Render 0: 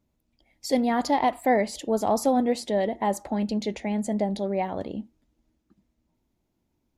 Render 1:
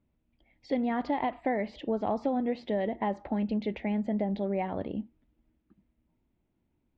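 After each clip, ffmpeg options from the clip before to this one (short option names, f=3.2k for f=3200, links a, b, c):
-af "lowpass=f=3k:w=0.5412,lowpass=f=3k:w=1.3066,equalizer=f=820:w=0.57:g=-3.5,acompressor=threshold=-25dB:ratio=6"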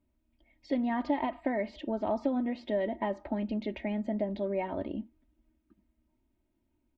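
-af "aecho=1:1:3.2:0.66,volume=-2.5dB"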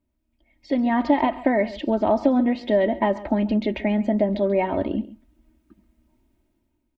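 -af "aecho=1:1:136:0.133,dynaudnorm=f=130:g=11:m=11dB"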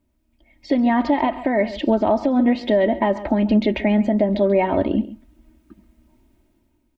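-af "alimiter=limit=-15.5dB:level=0:latency=1:release=346,volume=7dB"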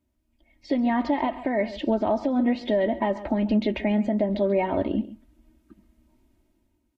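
-af "volume=-5.5dB" -ar 44100 -c:a libvorbis -b:a 48k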